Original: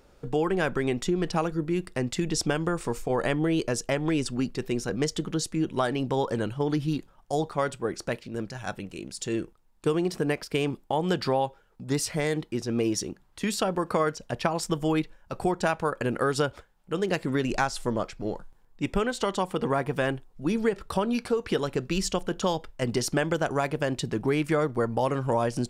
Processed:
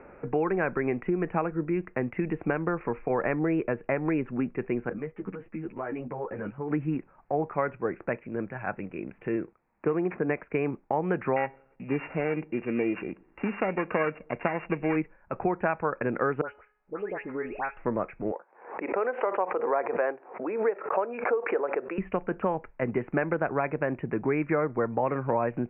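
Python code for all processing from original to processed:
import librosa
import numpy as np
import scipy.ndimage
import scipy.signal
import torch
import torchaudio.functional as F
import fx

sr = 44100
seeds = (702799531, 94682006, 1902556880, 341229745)

y = fx.chain(x, sr, fx.level_steps(step_db=11),
    fx.ensemble(), at=(4.89, 6.71))
y = fx.chain(y, sr, fx.highpass(hz=90.0, slope=6),
    fx.resample_linear(factor=6), at=(9.36, 10.29))
y = fx.chain(y, sr, fx.sample_sort(block=16),
    fx.peak_eq(hz=100.0, db=-12.0, octaves=0.43),
    fx.echo_wet_lowpass(ms=97, feedback_pct=38, hz=590.0, wet_db=-24.0), at=(11.36, 14.96))
y = fx.chain(y, sr, fx.peak_eq(hz=140.0, db=-11.0, octaves=1.5),
    fx.comb_fb(f0_hz=420.0, decay_s=0.54, harmonics='all', damping=0.0, mix_pct=60),
    fx.dispersion(late='highs', ms=128.0, hz=2500.0), at=(16.41, 17.77))
y = fx.chain(y, sr, fx.highpass(hz=490.0, slope=24),
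    fx.tilt_eq(slope=-4.5),
    fx.pre_swell(db_per_s=99.0), at=(18.31, 21.98))
y = scipy.signal.sosfilt(scipy.signal.butter(16, 2500.0, 'lowpass', fs=sr, output='sos'), y)
y = fx.low_shelf(y, sr, hz=110.0, db=-10.5)
y = fx.band_squash(y, sr, depth_pct=40)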